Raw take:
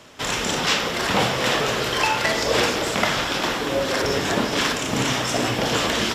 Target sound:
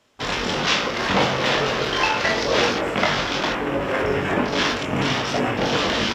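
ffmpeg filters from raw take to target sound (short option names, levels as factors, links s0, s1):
-filter_complex "[0:a]afwtdn=0.0398,asplit=2[s0][s1];[s1]adelay=21,volume=0.562[s2];[s0][s2]amix=inputs=2:normalize=0"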